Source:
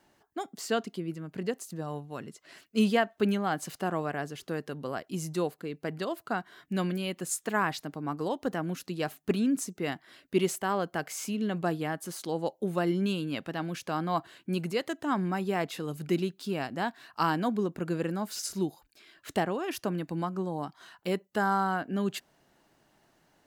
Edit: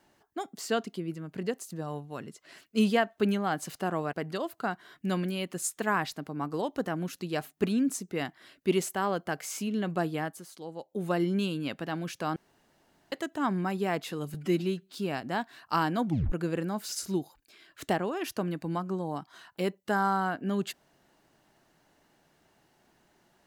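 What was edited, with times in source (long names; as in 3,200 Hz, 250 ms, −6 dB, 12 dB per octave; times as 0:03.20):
0:04.13–0:05.80: remove
0:11.91–0:12.73: duck −9.5 dB, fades 0.20 s
0:14.03–0:14.79: fill with room tone
0:16.01–0:16.41: time-stretch 1.5×
0:17.53: tape stop 0.26 s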